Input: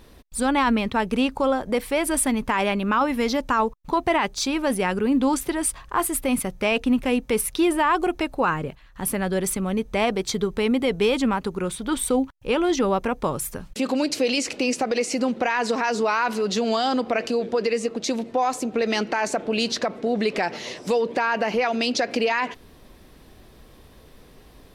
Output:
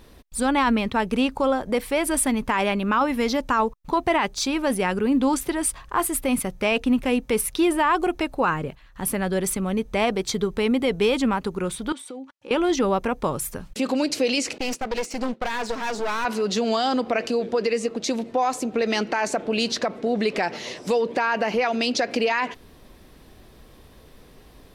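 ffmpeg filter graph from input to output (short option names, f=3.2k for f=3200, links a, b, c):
-filter_complex "[0:a]asettb=1/sr,asplit=3[a][b][c];[a]atrim=end=11.924[d];[b]atrim=start=11.92:end=12.51,asetpts=PTS-STARTPTS,afade=t=in:d=0.004:c=qsin,afade=t=out:st=0.586:d=0.004:c=qsin,acompressor=threshold=-33dB:ratio=8:attack=3.2:release=140:knee=1:detection=peak,highpass=260,lowpass=7.6k,aecho=1:1:3.5:0.45,atrim=end_sample=26019[e];[c]atrim=start=12.506[f];[d][e]acrossfade=d=0.004:c1=hsin:c2=qsin[g];[g][f]acrossfade=d=0.004:c1=qsin:c2=hsin,asettb=1/sr,asplit=3[h][i][j];[h]atrim=end=14.584[k];[i]atrim=start=14.58:end=16.25,asetpts=PTS-STARTPTS,afade=t=in:d=0.004:c=qsin,afade=t=out:st=1.666:d=0.004:c=qsin,agate=range=-33dB:threshold=-24dB:ratio=3:release=100:detection=peak,aeval=exprs='clip(val(0),-1,0.0224)':c=same[l];[j]atrim=start=16.246[m];[k][l]acrossfade=d=0.004:c1=hsin:c2=qsin[n];[n][m]acrossfade=d=0.004:c1=qsin:c2=hsin"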